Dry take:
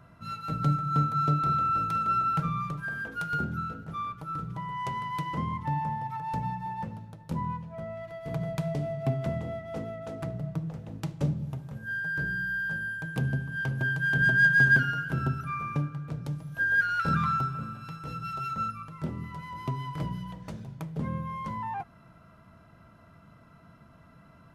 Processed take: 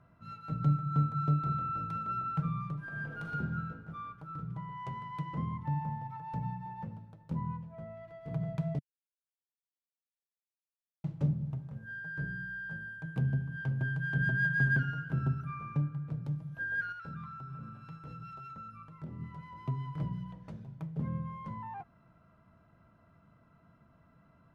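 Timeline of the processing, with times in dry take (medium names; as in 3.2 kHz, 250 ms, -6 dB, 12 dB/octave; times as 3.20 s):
2.75–3.30 s: reverb throw, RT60 2.4 s, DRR -1.5 dB
8.79–11.04 s: mute
16.92–19.20 s: compression, threshold -34 dBFS
whole clip: dynamic bell 140 Hz, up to +7 dB, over -43 dBFS, Q 1.2; low-pass 2.2 kHz 6 dB/octave; trim -8 dB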